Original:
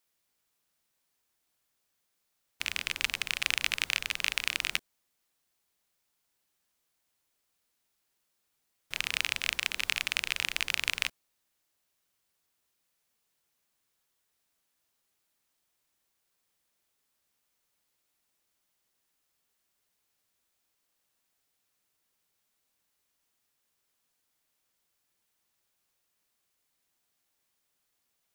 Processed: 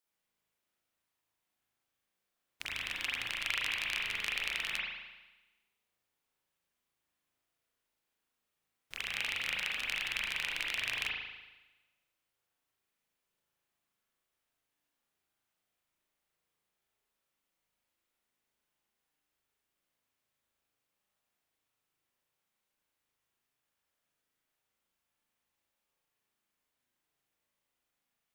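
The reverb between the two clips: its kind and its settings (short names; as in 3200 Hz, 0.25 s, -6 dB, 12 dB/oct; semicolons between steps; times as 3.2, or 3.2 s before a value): spring tank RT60 1.1 s, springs 37 ms, chirp 70 ms, DRR -5 dB; gain -9 dB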